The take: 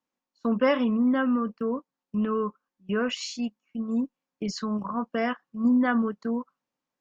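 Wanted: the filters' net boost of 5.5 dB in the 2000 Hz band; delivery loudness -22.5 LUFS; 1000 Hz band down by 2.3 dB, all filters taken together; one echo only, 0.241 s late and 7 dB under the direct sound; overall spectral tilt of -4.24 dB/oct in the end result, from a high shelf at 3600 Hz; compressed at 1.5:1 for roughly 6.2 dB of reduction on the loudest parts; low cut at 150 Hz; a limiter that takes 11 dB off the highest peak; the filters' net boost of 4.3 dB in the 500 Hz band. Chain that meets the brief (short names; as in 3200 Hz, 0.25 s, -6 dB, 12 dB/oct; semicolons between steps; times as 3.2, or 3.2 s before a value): HPF 150 Hz; bell 500 Hz +6 dB; bell 1000 Hz -8 dB; bell 2000 Hz +7.5 dB; high shelf 3600 Hz +9 dB; compressor 1.5:1, threshold -31 dBFS; limiter -25 dBFS; echo 0.241 s -7 dB; gain +10.5 dB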